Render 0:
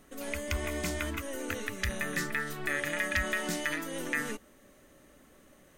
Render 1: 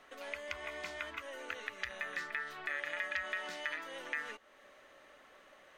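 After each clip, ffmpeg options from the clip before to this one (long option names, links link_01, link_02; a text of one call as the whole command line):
ffmpeg -i in.wav -filter_complex "[0:a]acompressor=threshold=-47dB:ratio=2,acrossover=split=530 4600:gain=0.0891 1 0.1[link_01][link_02][link_03];[link_01][link_02][link_03]amix=inputs=3:normalize=0,volume=5dB" out.wav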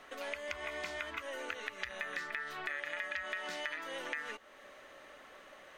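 ffmpeg -i in.wav -af "acompressor=threshold=-42dB:ratio=3,volume=5dB" out.wav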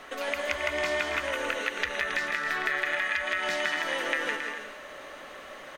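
ffmpeg -i in.wav -af "aecho=1:1:160|272|350.4|405.3|443.7:0.631|0.398|0.251|0.158|0.1,volume=9dB" out.wav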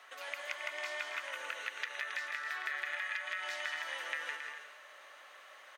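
ffmpeg -i in.wav -af "highpass=850,volume=-9dB" out.wav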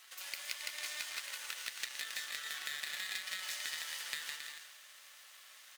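ffmpeg -i in.wav -af "flanger=delay=5.3:depth=8:regen=-77:speed=1.5:shape=sinusoidal,aeval=exprs='max(val(0),0)':channel_layout=same,aderivative,volume=16dB" out.wav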